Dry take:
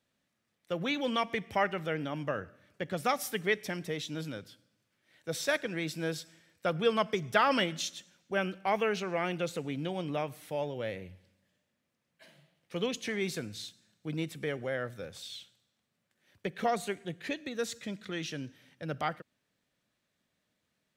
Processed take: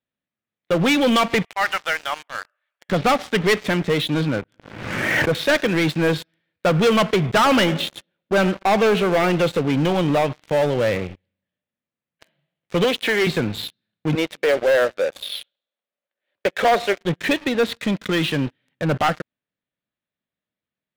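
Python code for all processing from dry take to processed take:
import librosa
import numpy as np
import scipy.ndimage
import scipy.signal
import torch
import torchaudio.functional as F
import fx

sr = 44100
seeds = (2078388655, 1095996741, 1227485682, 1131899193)

y = fx.chain(x, sr, fx.highpass(hz=780.0, slope=24),
    fx.auto_swell(attack_ms=173.0), at=(1.45, 2.89))
y = fx.chain(y, sr, fx.cheby2_lowpass(hz=9500.0, order=4, stop_db=70),
    fx.pre_swell(db_per_s=35.0), at=(4.27, 5.35))
y = fx.chain(y, sr, fx.high_shelf(hz=4800.0, db=-12.0),
    fx.echo_banded(ms=98, feedback_pct=54, hz=480.0, wet_db=-18.5), at=(7.26, 9.36))
y = fx.chain(y, sr, fx.highpass(hz=350.0, slope=12),
    fx.doppler_dist(depth_ms=0.1), at=(12.84, 13.27))
y = fx.chain(y, sr, fx.highpass(hz=420.0, slope=12),
    fx.peak_eq(hz=570.0, db=8.5, octaves=0.45), at=(14.15, 17.01))
y = scipy.signal.sosfilt(scipy.signal.butter(6, 3900.0, 'lowpass', fs=sr, output='sos'), y)
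y = fx.leveller(y, sr, passes=5)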